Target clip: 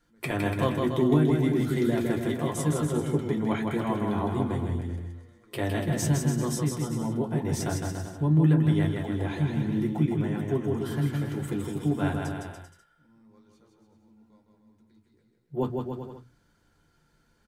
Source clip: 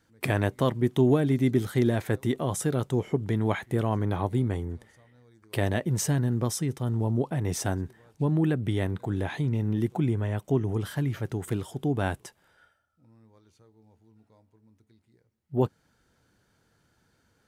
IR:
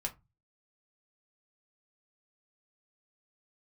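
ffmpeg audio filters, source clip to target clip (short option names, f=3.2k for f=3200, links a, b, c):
-filter_complex "[0:a]aecho=1:1:160|288|390.4|472.3|537.9:0.631|0.398|0.251|0.158|0.1[a];[1:a]atrim=start_sample=2205,asetrate=61740,aresample=44100[b];[a][b]afir=irnorm=-1:irlink=0"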